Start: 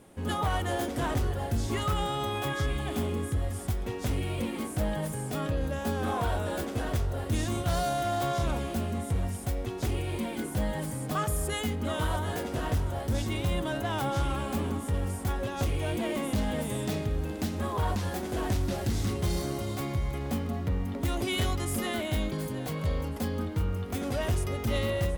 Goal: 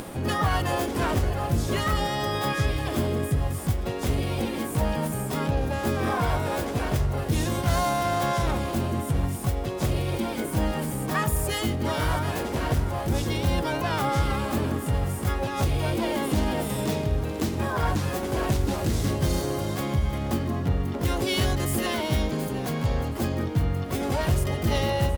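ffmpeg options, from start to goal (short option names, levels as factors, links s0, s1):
-filter_complex "[0:a]asplit=2[s0][s1];[s1]adelay=349,lowpass=f=2000:p=1,volume=0.0891,asplit=2[s2][s3];[s3]adelay=349,lowpass=f=2000:p=1,volume=0.16[s4];[s0][s2][s4]amix=inputs=3:normalize=0,asplit=2[s5][s6];[s6]asetrate=66075,aresample=44100,atempo=0.66742,volume=0.631[s7];[s5][s7]amix=inputs=2:normalize=0,acompressor=mode=upward:threshold=0.0355:ratio=2.5,volume=1.41"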